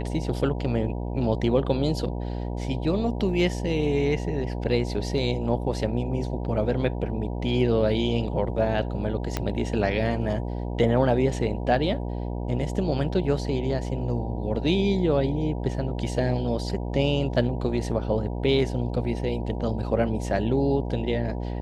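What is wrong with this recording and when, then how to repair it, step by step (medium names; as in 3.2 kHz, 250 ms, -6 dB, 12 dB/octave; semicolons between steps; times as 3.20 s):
buzz 60 Hz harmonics 16 -30 dBFS
9.37 s: pop -11 dBFS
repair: de-click; de-hum 60 Hz, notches 16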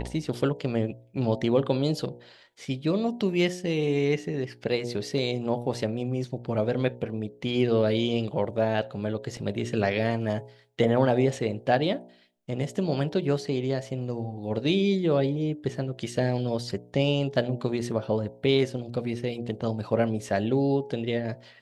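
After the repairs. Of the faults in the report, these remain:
9.37 s: pop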